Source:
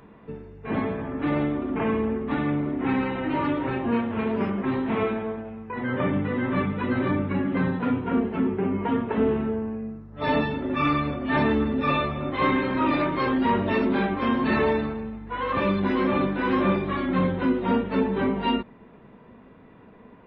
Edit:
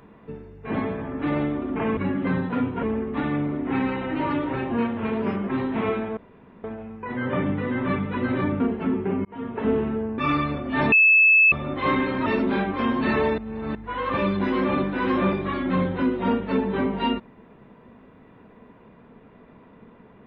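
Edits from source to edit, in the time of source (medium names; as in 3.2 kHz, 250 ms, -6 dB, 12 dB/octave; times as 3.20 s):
5.31 s: insert room tone 0.47 s
7.27–8.13 s: move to 1.97 s
8.78–9.21 s: fade in
9.71–10.74 s: delete
11.48–12.08 s: bleep 2.61 kHz -12 dBFS
12.82–13.69 s: delete
14.81–15.18 s: reverse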